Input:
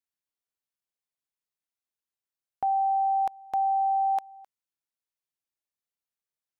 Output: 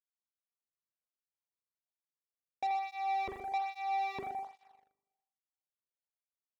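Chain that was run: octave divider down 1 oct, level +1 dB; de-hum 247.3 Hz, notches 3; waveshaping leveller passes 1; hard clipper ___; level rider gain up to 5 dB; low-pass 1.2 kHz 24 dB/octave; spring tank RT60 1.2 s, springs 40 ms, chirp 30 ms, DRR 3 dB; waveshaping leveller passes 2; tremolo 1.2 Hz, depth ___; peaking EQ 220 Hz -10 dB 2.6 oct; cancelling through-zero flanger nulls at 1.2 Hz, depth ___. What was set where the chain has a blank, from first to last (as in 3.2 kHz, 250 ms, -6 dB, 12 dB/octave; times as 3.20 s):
-30.5 dBFS, 43%, 1.4 ms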